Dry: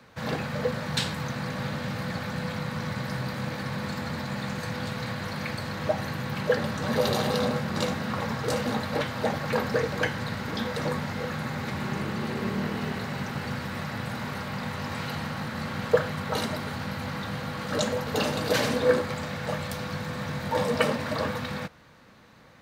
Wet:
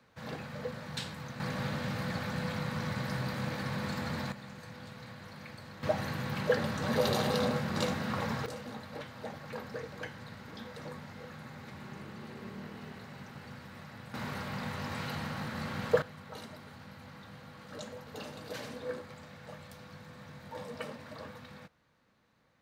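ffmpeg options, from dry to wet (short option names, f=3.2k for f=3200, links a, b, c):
-af "asetnsamples=n=441:p=0,asendcmd='1.4 volume volume -3.5dB;4.32 volume volume -15dB;5.83 volume volume -4dB;8.46 volume volume -15dB;14.14 volume volume -5dB;16.02 volume volume -17dB',volume=-11dB"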